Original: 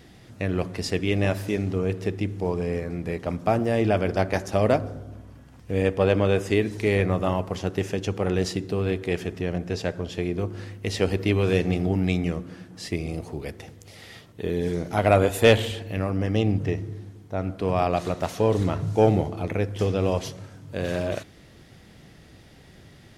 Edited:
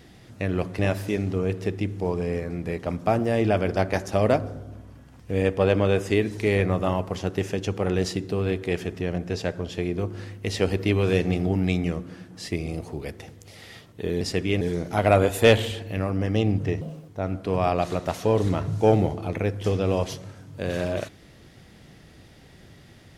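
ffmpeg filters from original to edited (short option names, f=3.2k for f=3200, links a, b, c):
-filter_complex "[0:a]asplit=6[a][b][c][d][e][f];[a]atrim=end=0.792[g];[b]atrim=start=1.188:end=14.612[h];[c]atrim=start=0.788:end=1.192[i];[d]atrim=start=14.608:end=16.814[j];[e]atrim=start=16.81:end=17.23,asetpts=PTS-STARTPTS,asetrate=67914,aresample=44100,atrim=end_sample=12027,asetpts=PTS-STARTPTS[k];[f]atrim=start=17.226[l];[g][h]acrossfade=d=0.004:c1=hsin:c2=hsin[m];[m][i]acrossfade=d=0.004:c1=hsin:c2=hsin[n];[n][j]acrossfade=d=0.004:c1=hsin:c2=hsin[o];[o][k]acrossfade=d=0.004:c1=hsin:c2=hsin[p];[p][l]acrossfade=d=0.004:c1=hsin:c2=hsin"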